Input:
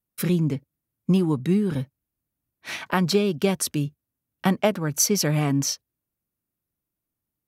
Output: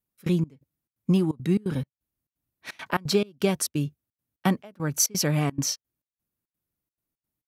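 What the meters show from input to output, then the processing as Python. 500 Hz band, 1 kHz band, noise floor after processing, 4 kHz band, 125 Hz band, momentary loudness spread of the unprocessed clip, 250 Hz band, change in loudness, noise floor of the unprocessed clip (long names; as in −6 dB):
−3.5 dB, −3.0 dB, below −85 dBFS, −2.0 dB, −2.5 dB, 13 LU, −3.0 dB, −3.0 dB, −85 dBFS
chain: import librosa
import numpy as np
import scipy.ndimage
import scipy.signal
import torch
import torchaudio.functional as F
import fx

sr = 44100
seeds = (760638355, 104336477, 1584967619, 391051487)

y = fx.step_gate(x, sr, bpm=172, pattern='xx.xx..xxx.xxxx.', floor_db=-24.0, edge_ms=4.5)
y = y * 10.0 ** (-1.5 / 20.0)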